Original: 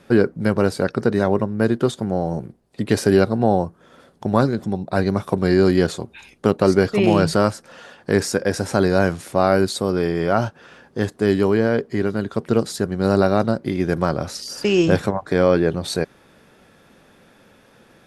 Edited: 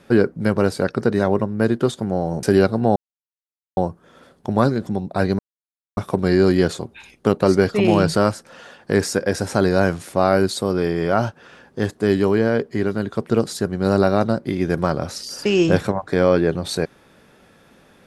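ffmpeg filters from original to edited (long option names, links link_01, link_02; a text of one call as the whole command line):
ffmpeg -i in.wav -filter_complex "[0:a]asplit=4[link_01][link_02][link_03][link_04];[link_01]atrim=end=2.432[link_05];[link_02]atrim=start=3.008:end=3.54,asetpts=PTS-STARTPTS,afade=type=out:start_time=0.528:duration=0.004:curve=hsin,apad=pad_dur=0.81[link_06];[link_03]atrim=start=3.54:end=5.16,asetpts=PTS-STARTPTS,afade=type=in:duration=0.004:curve=hsin,afade=type=out:start_time=1.616:duration=0.004:curve=hsin,apad=pad_dur=0.58[link_07];[link_04]atrim=start=5.16,asetpts=PTS-STARTPTS,afade=type=in:duration=0.004:curve=hsin[link_08];[link_06][link_07][link_08]concat=n=3:v=0:a=1[link_09];[link_05][link_09]acrossfade=duration=0.004:curve1=hsin:curve2=hsin" out.wav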